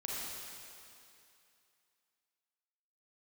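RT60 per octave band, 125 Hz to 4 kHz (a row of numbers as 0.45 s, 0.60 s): 2.3 s, 2.5 s, 2.5 s, 2.7 s, 2.7 s, 2.6 s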